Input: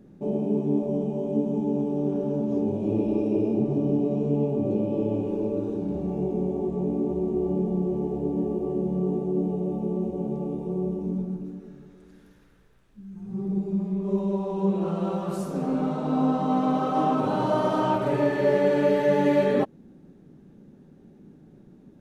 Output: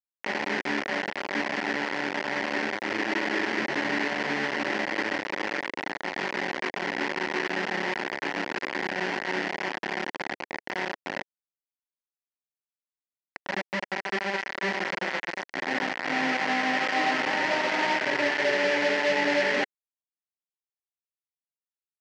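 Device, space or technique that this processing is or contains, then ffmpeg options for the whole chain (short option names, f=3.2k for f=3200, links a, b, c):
hand-held game console: -af "acrusher=bits=3:mix=0:aa=0.000001,highpass=410,equalizer=f=440:t=q:w=4:g=-7,equalizer=f=650:t=q:w=4:g=-4,equalizer=f=1.2k:t=q:w=4:g=-9,equalizer=f=1.9k:t=q:w=4:g=9,equalizer=f=3.7k:t=q:w=4:g=-7,lowpass=f=4.8k:w=0.5412,lowpass=f=4.8k:w=1.3066"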